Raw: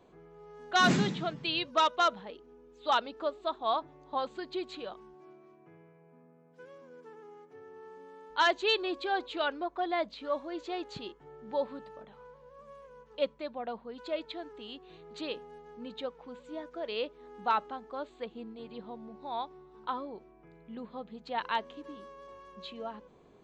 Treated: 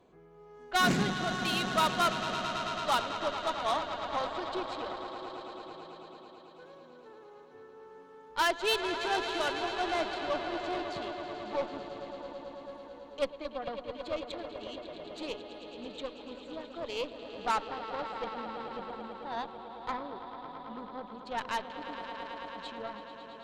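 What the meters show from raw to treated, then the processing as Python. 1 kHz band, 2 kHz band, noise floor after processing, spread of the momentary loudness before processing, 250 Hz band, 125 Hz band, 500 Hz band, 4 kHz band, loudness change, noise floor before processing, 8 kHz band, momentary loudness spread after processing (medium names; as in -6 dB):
0.0 dB, +0.5 dB, -53 dBFS, 23 LU, 0.0 dB, 0.0 dB, 0.0 dB, +0.5 dB, -1.0 dB, -60 dBFS, no reading, 18 LU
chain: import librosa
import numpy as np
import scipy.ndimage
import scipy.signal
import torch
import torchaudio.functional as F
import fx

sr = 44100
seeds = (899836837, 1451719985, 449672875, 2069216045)

y = fx.echo_swell(x, sr, ms=110, loudest=5, wet_db=-12.5)
y = fx.cheby_harmonics(y, sr, harmonics=(6, 8), levels_db=(-18, -15), full_scale_db=-14.5)
y = y * 10.0 ** (-2.0 / 20.0)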